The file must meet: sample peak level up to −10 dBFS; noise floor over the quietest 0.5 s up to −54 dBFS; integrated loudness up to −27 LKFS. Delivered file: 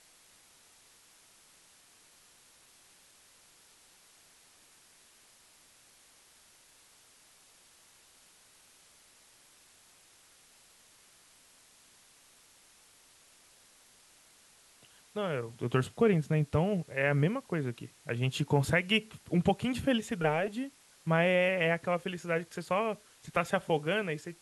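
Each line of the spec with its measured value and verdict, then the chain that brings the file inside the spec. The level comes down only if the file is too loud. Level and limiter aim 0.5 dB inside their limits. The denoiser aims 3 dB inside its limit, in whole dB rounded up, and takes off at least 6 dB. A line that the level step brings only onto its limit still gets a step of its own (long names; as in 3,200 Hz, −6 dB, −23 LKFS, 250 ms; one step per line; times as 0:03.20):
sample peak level −12.5 dBFS: in spec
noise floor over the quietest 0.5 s −61 dBFS: in spec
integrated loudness −31.0 LKFS: in spec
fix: no processing needed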